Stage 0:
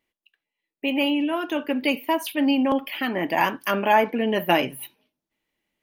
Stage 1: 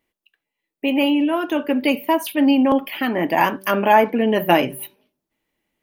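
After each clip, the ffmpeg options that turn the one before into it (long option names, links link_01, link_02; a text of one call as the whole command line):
ffmpeg -i in.wav -af "equalizer=frequency=3700:width_type=o:width=2.6:gain=-4.5,bandreject=frequency=192.9:width_type=h:width=4,bandreject=frequency=385.8:width_type=h:width=4,bandreject=frequency=578.7:width_type=h:width=4,volume=5.5dB" out.wav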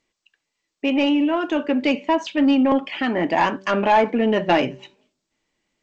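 ffmpeg -i in.wav -af "asoftclip=type=tanh:threshold=-8.5dB" -ar 16000 -c:a g722 out.g722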